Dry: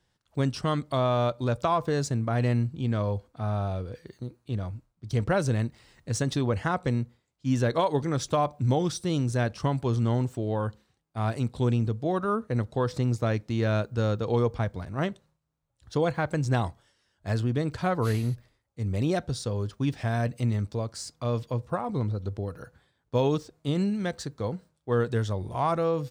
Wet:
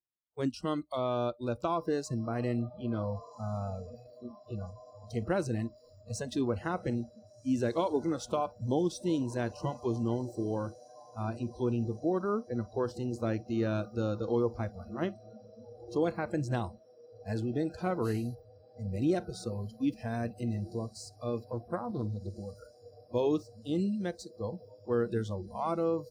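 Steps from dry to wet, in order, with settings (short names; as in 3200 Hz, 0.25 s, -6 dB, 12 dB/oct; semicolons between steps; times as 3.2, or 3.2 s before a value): 11.23–12.77 air absorption 53 m; on a send: diffused feedback echo 1.512 s, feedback 71%, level -14 dB; on the sum: spectral noise reduction 27 dB; bell 320 Hz +9.5 dB 1 oct; 21.44–22.36 Doppler distortion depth 0.17 ms; gain -8 dB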